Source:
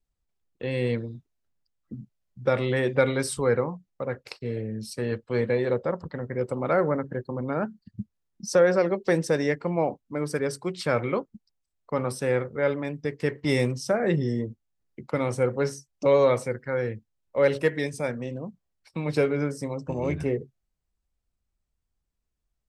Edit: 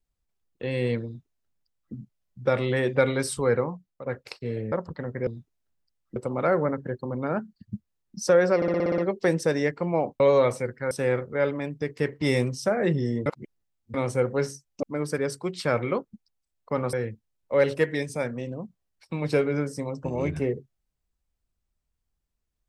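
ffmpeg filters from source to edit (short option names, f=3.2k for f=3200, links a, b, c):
-filter_complex "[0:a]asplit=18[a][b][c][d][e][f][g][h][i][j][k][l][m][n][o][p][q][r];[a]atrim=end=4.06,asetpts=PTS-STARTPTS,afade=t=out:st=3.71:d=0.35:silence=0.334965[s];[b]atrim=start=4.06:end=4.722,asetpts=PTS-STARTPTS,afade=t=in:d=0.004:c=hsin:silence=0.334965[t];[c]atrim=start=5.868:end=6.422[u];[d]atrim=start=1.048:end=1.942[v];[e]atrim=start=6.418:end=8.882[w];[f]atrim=start=8.818:end=8.882[x];[g]atrim=start=8.818:end=8.882[y];[h]atrim=start=8.818:end=8.882[z];[i]atrim=start=8.818:end=8.882[aa];[j]atrim=start=8.818:end=8.882[ab];[k]atrim=start=8.818:end=8.882[ac];[l]atrim=start=8.818:end=10.042[ad];[m]atrim=start=16.058:end=16.772[ae];[n]atrim=start=12.138:end=14.492[af];[o]atrim=start=14.488:end=15.172,asetpts=PTS-STARTPTS,areverse[ag];[p]atrim=start=15.168:end=16.062[ah];[q]atrim=start=10.038:end=12.142[ai];[r]atrim=start=16.768[aj];[s][t]concat=n=2:v=0:a=1[ak];[ak][u]acrossfade=d=0.004:c1=hsin:c2=hsin[al];[al][v]acrossfade=d=0.004:c1=hsin:c2=hsin[am];[am][w]acrossfade=d=0.004:c1=hsin:c2=hsin[an];[an][x]acrossfade=d=0.004:c1=hsin:c2=hsin[ao];[ao][y]acrossfade=d=0.004:c1=hsin:c2=hsin[ap];[ap][z]acrossfade=d=0.004:c1=hsin:c2=hsin[aq];[aq][aa]acrossfade=d=0.004:c1=hsin:c2=hsin[ar];[ar][ab]acrossfade=d=0.004:c1=hsin:c2=hsin[as];[as][ac]acrossfade=d=0.004:c1=hsin:c2=hsin[at];[at][ad]acrossfade=d=0.004:c1=hsin:c2=hsin[au];[au][ae]acrossfade=d=0.004:c1=hsin:c2=hsin[av];[av][af]acrossfade=d=0.004:c1=hsin:c2=hsin[aw];[aw][ag]acrossfade=d=0.004:c1=hsin:c2=hsin[ax];[ax][ah]acrossfade=d=0.004:c1=hsin:c2=hsin[ay];[ay][ai]acrossfade=d=0.004:c1=hsin:c2=hsin[az];[az][aj]acrossfade=d=0.004:c1=hsin:c2=hsin"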